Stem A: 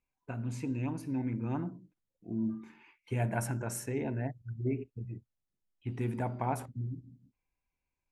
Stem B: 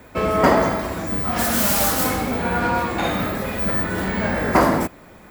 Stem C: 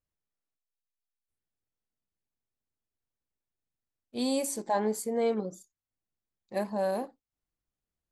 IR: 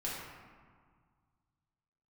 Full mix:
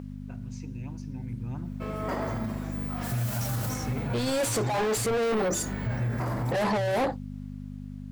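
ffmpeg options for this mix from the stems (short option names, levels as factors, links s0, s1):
-filter_complex "[0:a]asubboost=boost=12:cutoff=110,lowpass=f=5800:t=q:w=4.5,volume=0.376,asplit=2[s0][s1];[1:a]adelay=1650,volume=0.106[s2];[2:a]aeval=exprs='val(0)+0.00316*(sin(2*PI*50*n/s)+sin(2*PI*2*50*n/s)/2+sin(2*PI*3*50*n/s)/3+sin(2*PI*4*50*n/s)/4+sin(2*PI*5*50*n/s)/5)':c=same,asplit=2[s3][s4];[s4]highpass=f=720:p=1,volume=56.2,asoftclip=type=tanh:threshold=0.141[s5];[s3][s5]amix=inputs=2:normalize=0,lowpass=f=3100:p=1,volume=0.501,volume=1.19[s6];[s1]apad=whole_len=358019[s7];[s6][s7]sidechaincompress=threshold=0.02:ratio=8:attack=16:release=158[s8];[s0][s2][s8]amix=inputs=3:normalize=0,dynaudnorm=f=300:g=13:m=2,alimiter=limit=0.0841:level=0:latency=1:release=37"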